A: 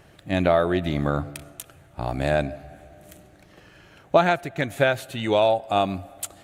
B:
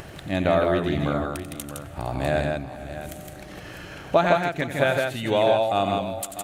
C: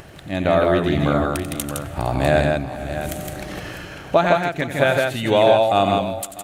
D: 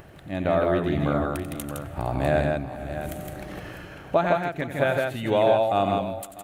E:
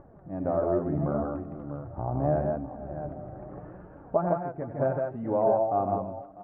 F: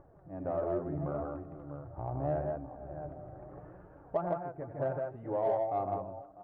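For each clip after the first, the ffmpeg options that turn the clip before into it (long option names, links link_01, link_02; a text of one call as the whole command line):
ffmpeg -i in.wav -af "acompressor=mode=upward:threshold=-27dB:ratio=2.5,aecho=1:1:90|162|460|650:0.299|0.668|0.112|0.251,volume=-2dB" out.wav
ffmpeg -i in.wav -af "dynaudnorm=framelen=130:gausssize=7:maxgain=11dB,volume=-1.5dB" out.wav
ffmpeg -i in.wav -af "equalizer=frequency=5800:width=0.53:gain=-7.5,volume=-5dB" out.wav
ffmpeg -i in.wav -af "lowpass=frequency=1100:width=0.5412,lowpass=frequency=1100:width=1.3066,flanger=delay=3.3:depth=6:regen=44:speed=0.75:shape=triangular" out.wav
ffmpeg -i in.wav -filter_complex "[0:a]equalizer=frequency=220:width_type=o:width=0.33:gain=-13,asplit=2[link_01][link_02];[link_02]asoftclip=type=tanh:threshold=-24dB,volume=-10dB[link_03];[link_01][link_03]amix=inputs=2:normalize=0,volume=-8dB" out.wav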